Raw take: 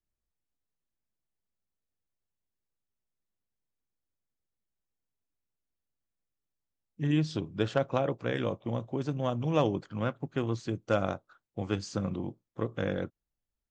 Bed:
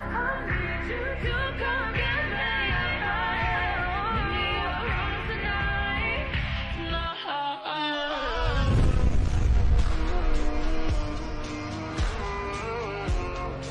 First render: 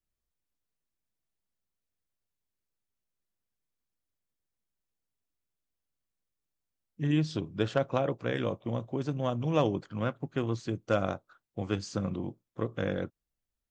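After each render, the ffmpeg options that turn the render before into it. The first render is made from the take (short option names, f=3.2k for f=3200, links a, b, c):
-af "bandreject=f=840:w=25"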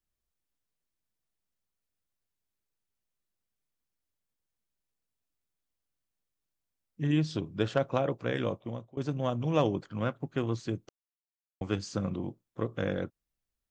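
-filter_complex "[0:a]asplit=4[a][b][c][d];[a]atrim=end=8.97,asetpts=PTS-STARTPTS,afade=t=out:st=8.51:d=0.46:silence=0.0707946[e];[b]atrim=start=8.97:end=10.89,asetpts=PTS-STARTPTS,afade=t=in:d=0.004:c=hsin:silence=0.0707946,afade=t=out:st=1.916:d=0.004:c=hsin[f];[c]atrim=start=10.89:end=11.61,asetpts=PTS-STARTPTS,volume=0[g];[d]atrim=start=11.61,asetpts=PTS-STARTPTS,afade=t=in:d=0.004:c=hsin[h];[e][f][g][h]concat=n=4:v=0:a=1"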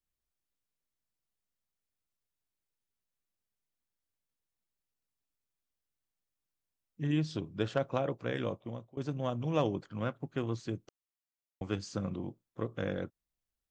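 -af "volume=-3.5dB"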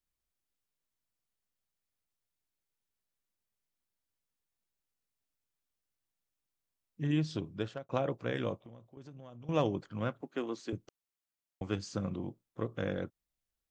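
-filter_complex "[0:a]asettb=1/sr,asplit=3[a][b][c];[a]atrim=end=8.614[d];[b]atrim=start=8.61:end=9.49,asetpts=PTS-STARTPTS,afade=t=in:d=0.004:c=qsin,afade=t=out:st=0.876:d=0.004:c=qsin,acompressor=threshold=-49dB:ratio=4:attack=3.2:release=140:knee=1:detection=peak[e];[c]atrim=start=9.486[f];[d][e]acrossfade=d=0.004:c1=hsin:c2=qsin[g];[g][f]acrossfade=d=0.004:c1=qsin:c2=hsin,asettb=1/sr,asplit=3[h][i][j];[h]atrim=end=10.214[k];[i]atrim=start=10.21:end=10.73,asetpts=PTS-STARTPTS,afade=t=in:d=0.004:c=qsin,afade=t=out:st=0.516:d=0.004:c=qsin,highpass=f=230:w=0.5412,highpass=f=230:w=1.3066[l];[j]atrim=start=10.726[m];[k][l]acrossfade=d=0.004:c1=hsin:c2=qsin[n];[n][m]acrossfade=d=0.004:c1=qsin:c2=hsin,asplit=2[o][p];[o]atrim=end=7.89,asetpts=PTS-STARTPTS,afade=t=out:st=7.49:d=0.4[q];[p]atrim=start=7.89,asetpts=PTS-STARTPTS,afade=t=in:d=0.004:c=hsin[r];[q][r]concat=n=2:v=0:a=1"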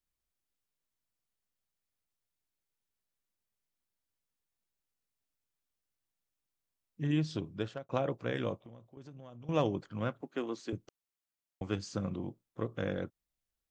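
-af anull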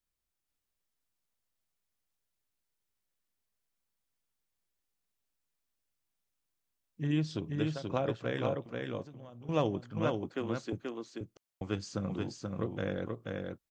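-af "aecho=1:1:482:0.668"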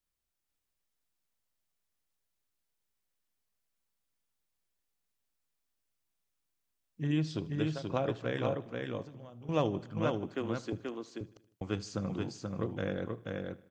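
-af "aecho=1:1:77|154|231|308:0.1|0.056|0.0314|0.0176"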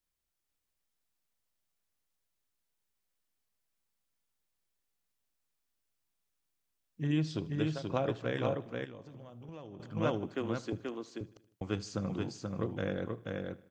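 -filter_complex "[0:a]asettb=1/sr,asplit=3[a][b][c];[a]atrim=end=8.844[d];[b]atrim=start=8.84:end=9.8,asetpts=PTS-STARTPTS,afade=t=in:d=0.004:c=qsin,afade=t=out:st=0.956:d=0.004:c=qsin,acompressor=threshold=-44dB:ratio=6:attack=3.2:release=140:knee=1:detection=peak[e];[c]atrim=start=9.796[f];[d][e]acrossfade=d=0.004:c1=hsin:c2=qsin[g];[g][f]acrossfade=d=0.004:c1=qsin:c2=hsin"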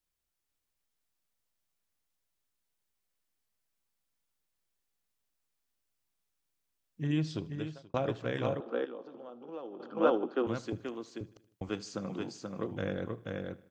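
-filter_complex "[0:a]asettb=1/sr,asplit=3[a][b][c];[a]atrim=end=8.604[d];[b]atrim=start=8.6:end=10.47,asetpts=PTS-STARTPTS,afade=t=in:d=0.004:c=qsin,afade=t=out:st=1.866:d=0.004:c=qsin,highpass=f=240:w=0.5412,highpass=f=240:w=1.3066,equalizer=f=240:t=q:w=4:g=4,equalizer=f=350:t=q:w=4:g=6,equalizer=f=490:t=q:w=4:g=8,equalizer=f=810:t=q:w=4:g=7,equalizer=f=1.3k:t=q:w=4:g=9,equalizer=f=2.1k:t=q:w=4:g=-9,lowpass=f=4.7k:w=0.5412,lowpass=f=4.7k:w=1.3066[e];[c]atrim=start=10.466[f];[d][e]acrossfade=d=0.004:c1=hsin:c2=qsin[g];[g][f]acrossfade=d=0.004:c1=qsin:c2=hsin,asettb=1/sr,asplit=3[h][i][j];[h]atrim=end=11.694[k];[i]atrim=start=11.69:end=12.71,asetpts=PTS-STARTPTS,afade=t=in:d=0.004:c=qsin,afade=t=out:st=1.016:d=0.004:c=qsin,highpass=190[l];[j]atrim=start=12.706[m];[k][l]acrossfade=d=0.004:c1=hsin:c2=qsin[n];[n][m]acrossfade=d=0.004:c1=qsin:c2=hsin,asplit=2[o][p];[o]atrim=end=7.94,asetpts=PTS-STARTPTS,afade=t=out:st=7.33:d=0.61[q];[p]atrim=start=7.94,asetpts=PTS-STARTPTS,afade=t=in:d=0.004:c=hsin[r];[q][r]concat=n=2:v=0:a=1"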